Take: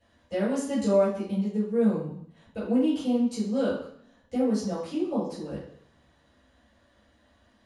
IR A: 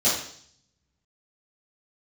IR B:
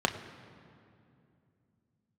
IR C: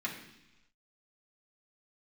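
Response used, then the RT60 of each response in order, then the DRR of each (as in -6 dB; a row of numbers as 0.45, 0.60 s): A; 0.60 s, 2.6 s, not exponential; -12.5, 4.0, -4.5 dB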